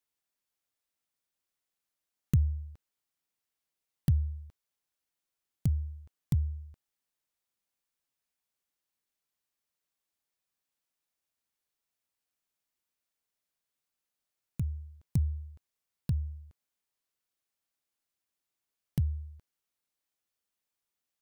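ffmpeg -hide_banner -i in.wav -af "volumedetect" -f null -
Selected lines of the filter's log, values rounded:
mean_volume: -38.4 dB
max_volume: -14.4 dB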